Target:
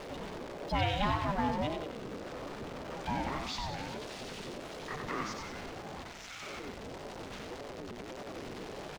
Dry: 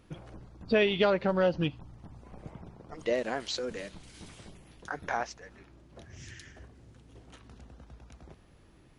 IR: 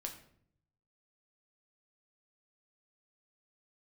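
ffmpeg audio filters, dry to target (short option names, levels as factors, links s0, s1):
-filter_complex "[0:a]aeval=exprs='val(0)+0.5*0.0316*sgn(val(0))':c=same,asettb=1/sr,asplit=3[s0][s1][s2];[s0]atrim=end=6.004[s3];[s1]atrim=start=6:end=6.43,asetpts=PTS-STARTPTS,afade=t=in:d=0.004:c=qsin,afade=t=out:st=0.426:d=0.004:c=qsin,highpass=350[s4];[s2]atrim=start=6.426[s5];[s3][s4]acrossfade=d=0.004:c1=hsin:c2=qsin[s6];[s6][s5]acrossfade=d=0.004:c1=qsin:c2=hsin,aecho=1:1:93|186|279|372|465|558:0.562|0.27|0.13|0.0622|0.0299|0.0143,acrossover=split=6600[s7][s8];[s8]acompressor=threshold=0.00126:ratio=4:attack=1:release=60[s9];[s7][s9]amix=inputs=2:normalize=0,aeval=exprs='val(0)*sin(2*PI*400*n/s+400*0.25/1.7*sin(2*PI*1.7*n/s))':c=same,volume=0.531"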